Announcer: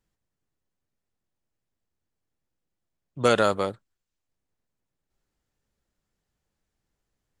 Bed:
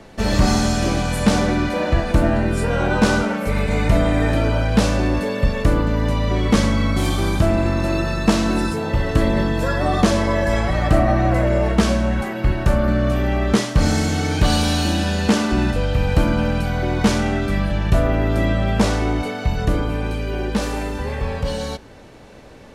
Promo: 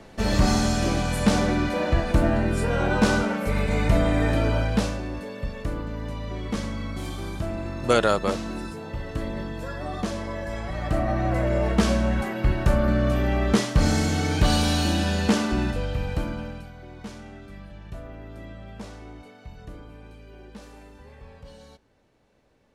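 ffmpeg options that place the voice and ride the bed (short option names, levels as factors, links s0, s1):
-filter_complex "[0:a]adelay=4650,volume=1.06[s0];[1:a]volume=1.88,afade=t=out:st=4.59:d=0.42:silence=0.354813,afade=t=in:st=10.57:d=1.39:silence=0.334965,afade=t=out:st=15.16:d=1.57:silence=0.11885[s1];[s0][s1]amix=inputs=2:normalize=0"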